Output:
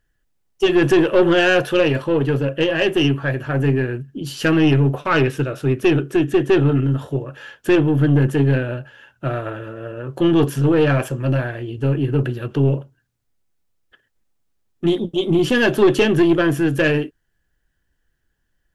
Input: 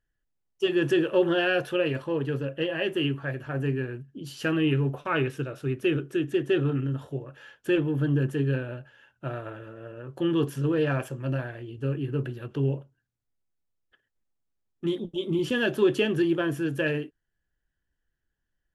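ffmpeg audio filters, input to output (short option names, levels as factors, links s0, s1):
-af "acontrast=70,aeval=exprs='(tanh(3.98*val(0)+0.3)-tanh(0.3))/3.98':c=same,volume=1.78"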